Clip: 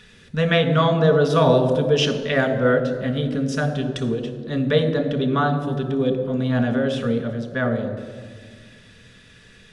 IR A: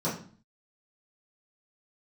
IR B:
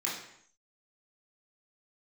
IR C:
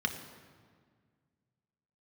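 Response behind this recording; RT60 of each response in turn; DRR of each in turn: C; 0.45 s, not exponential, 1.8 s; -11.0, -6.5, 5.0 dB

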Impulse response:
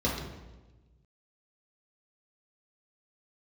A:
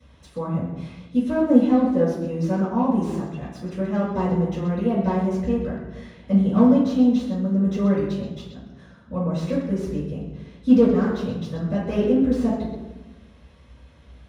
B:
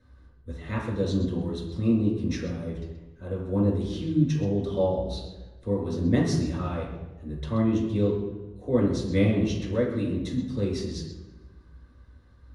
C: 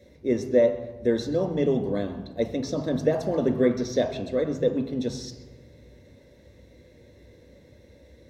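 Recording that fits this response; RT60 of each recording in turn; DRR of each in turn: B; 1.2, 1.2, 1.2 s; -13.0, -5.0, 4.0 dB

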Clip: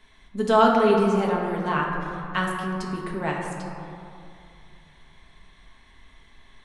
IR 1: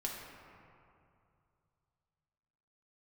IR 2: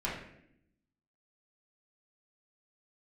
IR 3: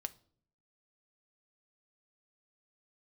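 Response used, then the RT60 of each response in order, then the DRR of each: 1; 2.5, 0.75, 0.55 s; -2.5, -7.0, 10.0 dB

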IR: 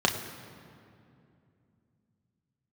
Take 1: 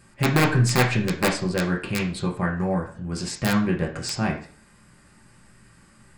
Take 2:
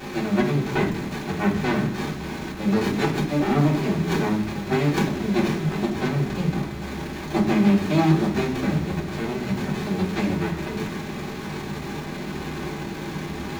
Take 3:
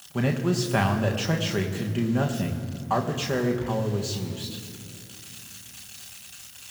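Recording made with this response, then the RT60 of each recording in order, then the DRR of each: 3; 0.45, 0.65, 2.6 s; -2.0, -6.5, 1.5 dB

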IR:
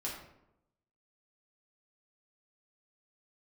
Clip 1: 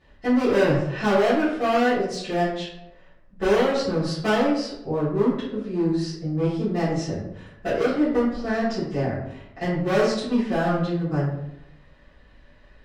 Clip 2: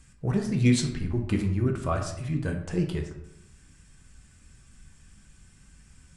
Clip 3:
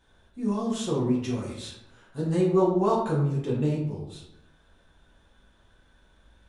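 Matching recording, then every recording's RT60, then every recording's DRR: 3; 0.85, 0.85, 0.85 s; -13.5, 2.0, -5.5 dB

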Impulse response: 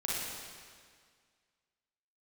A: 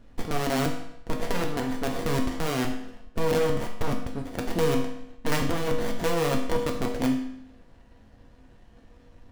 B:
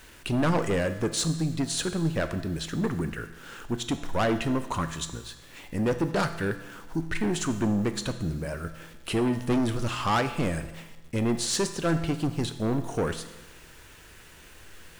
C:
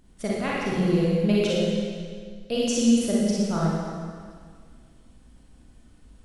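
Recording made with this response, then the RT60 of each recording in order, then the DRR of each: C; 0.80, 1.1, 1.9 s; 0.5, 9.0, -6.5 dB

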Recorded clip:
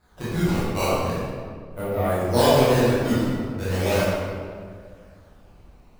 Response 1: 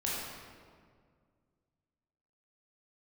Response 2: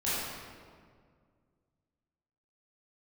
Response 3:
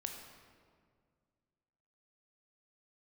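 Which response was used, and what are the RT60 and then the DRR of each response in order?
2; 1.9, 1.9, 2.0 s; -6.5, -12.0, 2.5 dB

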